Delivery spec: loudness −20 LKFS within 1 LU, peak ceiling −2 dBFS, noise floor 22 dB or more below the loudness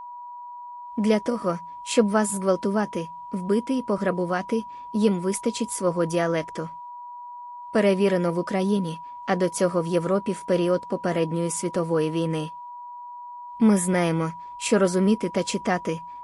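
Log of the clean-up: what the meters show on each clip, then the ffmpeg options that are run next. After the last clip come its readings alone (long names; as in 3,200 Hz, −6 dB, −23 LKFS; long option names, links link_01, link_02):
interfering tone 970 Hz; level of the tone −36 dBFS; integrated loudness −24.5 LKFS; sample peak −7.5 dBFS; target loudness −20.0 LKFS
→ -af "bandreject=frequency=970:width=30"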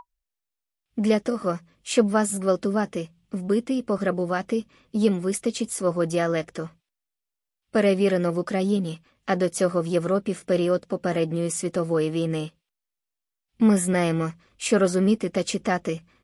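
interfering tone none found; integrated loudness −24.5 LKFS; sample peak −7.5 dBFS; target loudness −20.0 LKFS
→ -af "volume=4.5dB"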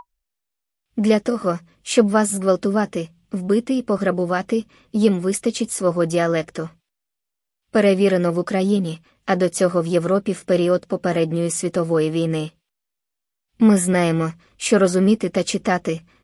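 integrated loudness −20.0 LKFS; sample peak −3.0 dBFS; background noise floor −81 dBFS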